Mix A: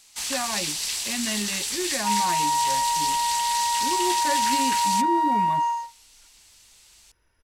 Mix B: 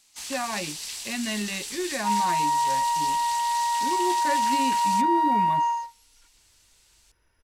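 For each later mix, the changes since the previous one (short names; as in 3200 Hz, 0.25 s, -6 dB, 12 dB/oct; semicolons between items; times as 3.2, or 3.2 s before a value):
first sound -7.0 dB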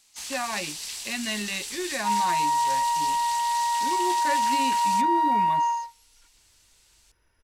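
speech: add tilt +1.5 dB/oct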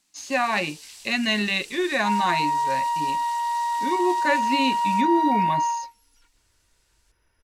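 speech +7.5 dB; first sound -9.0 dB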